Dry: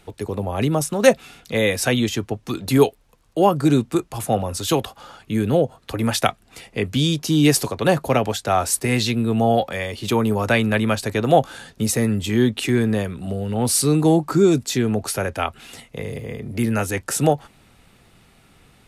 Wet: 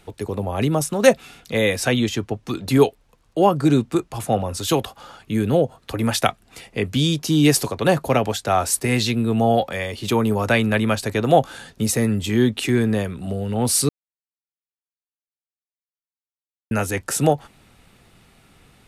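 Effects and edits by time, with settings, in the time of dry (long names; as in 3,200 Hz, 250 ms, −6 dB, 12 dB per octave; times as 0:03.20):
0:01.77–0:04.58: high-shelf EQ 10,000 Hz −7 dB
0:13.89–0:16.71: silence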